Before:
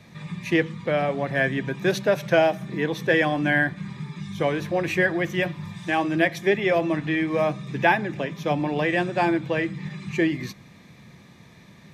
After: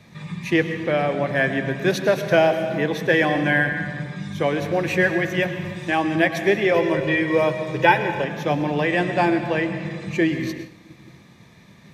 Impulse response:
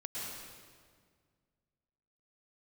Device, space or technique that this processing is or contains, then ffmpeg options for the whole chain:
keyed gated reverb: -filter_complex "[0:a]asplit=3[s0][s1][s2];[1:a]atrim=start_sample=2205[s3];[s1][s3]afir=irnorm=-1:irlink=0[s4];[s2]apad=whole_len=526477[s5];[s4][s5]sidechaingate=range=0.0224:threshold=0.00501:ratio=16:detection=peak,volume=0.473[s6];[s0][s6]amix=inputs=2:normalize=0,asettb=1/sr,asplit=3[s7][s8][s9];[s7]atrim=end=6.744[s10];[s8]atrim=start=6.74:end=8.24,asetpts=PTS-STARTPTS,afade=t=in:d=0.004:c=qsin,afade=t=out:st=1.496:d=0.004:c=qsin,aecho=1:1:2.1:0.75,atrim=end_sample=66150[s11];[s9]atrim=start=8.236[s12];[s10][s11]acrossfade=d=0.004:c1=hsin:c2=qsin[s13];[s13][s12]acrossfade=d=0.004:c1=qsin:c2=hsin"

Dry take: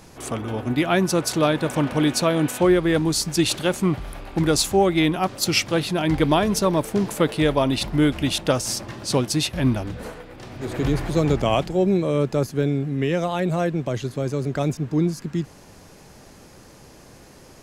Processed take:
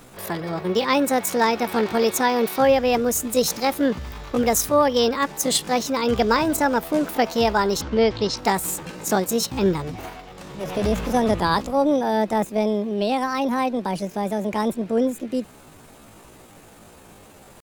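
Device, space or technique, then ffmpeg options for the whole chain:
chipmunk voice: -filter_complex "[0:a]asetrate=66075,aresample=44100,atempo=0.66742,asplit=3[s0][s1][s2];[s0]afade=t=out:st=7.8:d=0.02[s3];[s1]lowpass=f=5900:w=0.5412,lowpass=f=5900:w=1.3066,afade=t=in:st=7.8:d=0.02,afade=t=out:st=8.37:d=0.02[s4];[s2]afade=t=in:st=8.37:d=0.02[s5];[s3][s4][s5]amix=inputs=3:normalize=0"

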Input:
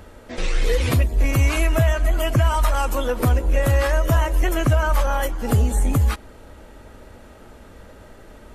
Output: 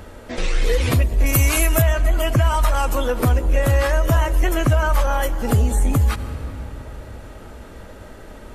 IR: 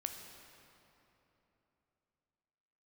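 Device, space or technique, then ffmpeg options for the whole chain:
ducked reverb: -filter_complex "[0:a]asplit=3[s0][s1][s2];[1:a]atrim=start_sample=2205[s3];[s1][s3]afir=irnorm=-1:irlink=0[s4];[s2]apad=whole_len=376999[s5];[s4][s5]sidechaincompress=threshold=0.0316:ratio=8:attack=16:release=107,volume=0.841[s6];[s0][s6]amix=inputs=2:normalize=0,asettb=1/sr,asplit=3[s7][s8][s9];[s7]atrim=end=1.264[s10];[s8]atrim=start=1.26:end=1.82,asetpts=PTS-STARTPTS,afade=t=in:d=0.004:c=qsin,afade=t=out:st=0.556:d=0.004:c=qsin,aemphasis=mode=production:type=50fm[s11];[s9]atrim=start=1.816[s12];[s10][s11]acrossfade=d=0.004:c1=hsin:c2=qsin[s13];[s13][s12]acrossfade=d=0.004:c1=qsin:c2=hsin"

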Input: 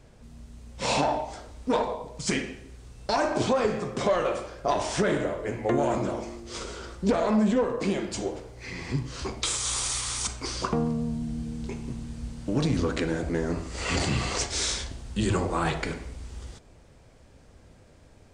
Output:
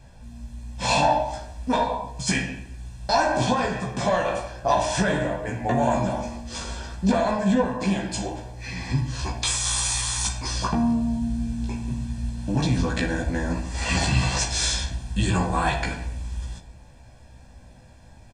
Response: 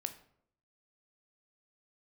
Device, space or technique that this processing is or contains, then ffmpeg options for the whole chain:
microphone above a desk: -filter_complex "[0:a]aecho=1:1:1.2:0.66[s0];[1:a]atrim=start_sample=2205[s1];[s0][s1]afir=irnorm=-1:irlink=0,asplit=2[s2][s3];[s3]adelay=16,volume=0.708[s4];[s2][s4]amix=inputs=2:normalize=0,volume=1.26"

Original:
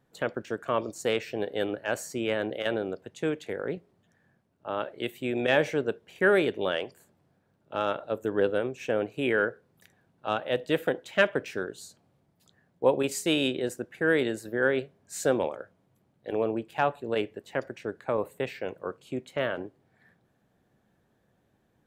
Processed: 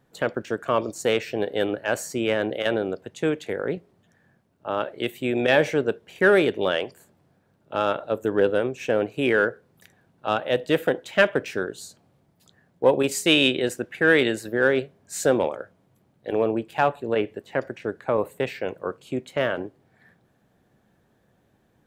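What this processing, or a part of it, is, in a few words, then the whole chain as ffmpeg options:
parallel distortion: -filter_complex "[0:a]asplit=2[s0][s1];[s1]asoftclip=type=hard:threshold=0.1,volume=0.299[s2];[s0][s2]amix=inputs=2:normalize=0,asettb=1/sr,asplit=3[s3][s4][s5];[s3]atrim=end=13.264[s6];[s4]atrim=start=13.26:end=14.48,asetpts=PTS-STARTPTS,afade=t=in:d=0.004:c=qsin,afade=t=out:st=1.216:d=0.004:c=qsin,equalizer=f=2600:w=0.87:g=6[s7];[s5]atrim=start=14.476[s8];[s6][s7]acrossfade=d=0.004:c1=hsin:c2=qsin[s9];[s9][s8]acrossfade=d=0.004:c1=qsin:c2=hsin,asettb=1/sr,asplit=3[s10][s11][s12];[s10]atrim=end=16.944[s13];[s11]atrim=start=16.94:end=18.21,asetpts=PTS-STARTPTS,afade=t=in:d=0.004:c=qsin,afade=t=out:st=1.266:d=0.004:c=qsin,acrossover=split=3200[s14][s15];[s15]acompressor=threshold=0.00158:ratio=4:attack=1:release=60[s16];[s14][s16]amix=inputs=2:normalize=0[s17];[s12]atrim=start=18.206[s18];[s13][s17]acrossfade=d=0.004:c1=hsin:c2=qsin[s19];[s19][s18]acrossfade=d=0.004:c1=qsin:c2=hsin,volume=1.41"

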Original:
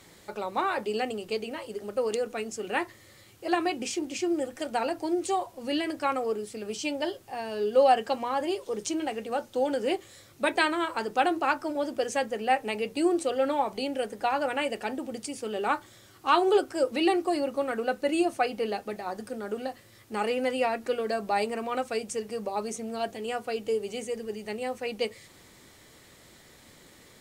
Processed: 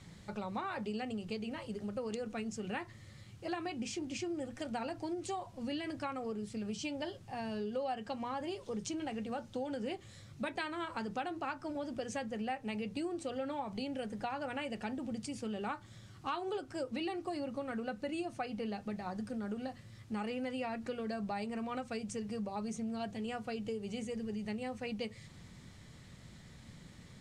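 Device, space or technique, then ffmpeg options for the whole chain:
jukebox: -af "lowpass=7600,lowshelf=f=250:t=q:w=1.5:g=11,acompressor=threshold=0.0282:ratio=4,volume=0.562"

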